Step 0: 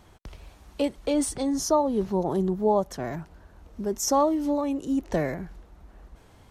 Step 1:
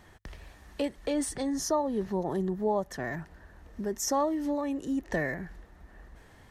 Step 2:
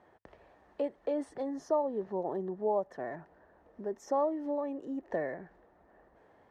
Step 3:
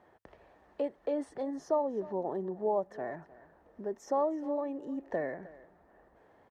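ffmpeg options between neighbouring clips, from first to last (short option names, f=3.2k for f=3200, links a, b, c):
-filter_complex "[0:a]equalizer=f=1.8k:t=o:w=0.22:g=13.5,bandreject=f=50:t=h:w=6,bandreject=f=100:t=h:w=6,asplit=2[a][b];[b]acompressor=threshold=-31dB:ratio=6,volume=1dB[c];[a][c]amix=inputs=2:normalize=0,volume=-8dB"
-af "bandpass=f=590:t=q:w=1.2:csg=0"
-af "aecho=1:1:309:0.112"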